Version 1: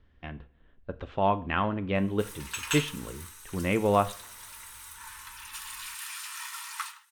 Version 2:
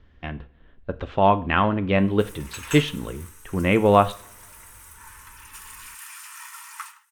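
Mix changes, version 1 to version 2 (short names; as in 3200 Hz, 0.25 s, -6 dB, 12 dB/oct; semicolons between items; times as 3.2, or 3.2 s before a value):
speech +7.5 dB; background: add bell 3900 Hz -9.5 dB 0.77 oct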